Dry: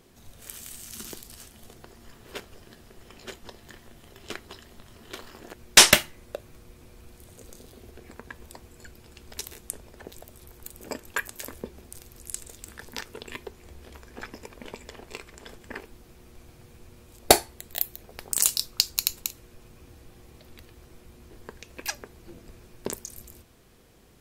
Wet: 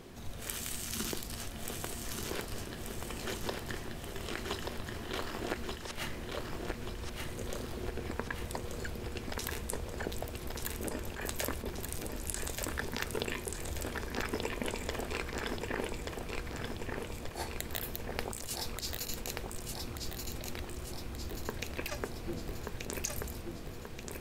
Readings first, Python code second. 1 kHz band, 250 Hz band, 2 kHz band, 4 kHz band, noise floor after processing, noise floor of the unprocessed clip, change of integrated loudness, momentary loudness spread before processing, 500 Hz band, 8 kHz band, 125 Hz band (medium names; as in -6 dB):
-7.0 dB, +0.5 dB, -8.5 dB, -13.0 dB, -44 dBFS, -54 dBFS, -15.0 dB, 22 LU, -4.0 dB, -12.5 dB, +5.0 dB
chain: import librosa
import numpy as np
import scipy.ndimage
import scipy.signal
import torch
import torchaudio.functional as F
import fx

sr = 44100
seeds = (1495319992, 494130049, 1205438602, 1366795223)

p1 = fx.high_shelf(x, sr, hz=5100.0, db=-7.5)
p2 = fx.over_compress(p1, sr, threshold_db=-41.0, ratio=-1.0)
p3 = p2 + fx.echo_feedback(p2, sr, ms=1182, feedback_pct=54, wet_db=-4, dry=0)
y = p3 * 10.0 ** (1.0 / 20.0)